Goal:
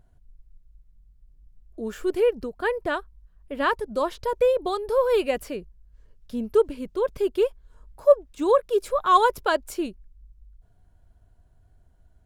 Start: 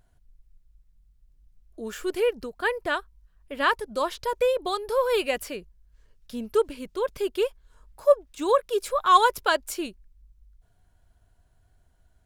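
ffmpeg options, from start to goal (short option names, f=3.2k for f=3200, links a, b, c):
-af "tiltshelf=f=970:g=5"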